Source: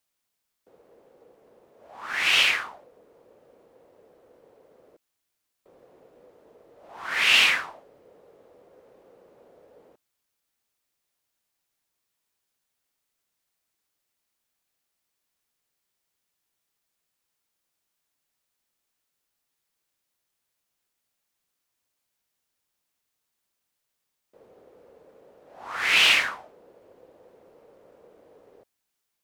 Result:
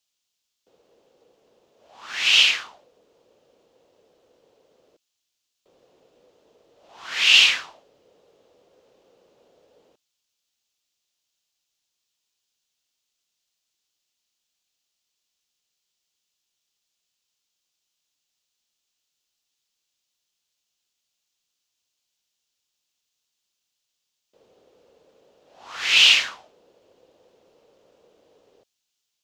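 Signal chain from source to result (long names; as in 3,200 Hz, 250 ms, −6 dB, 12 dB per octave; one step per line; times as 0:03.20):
flat-topped bell 4,400 Hz +11.5 dB
level −5 dB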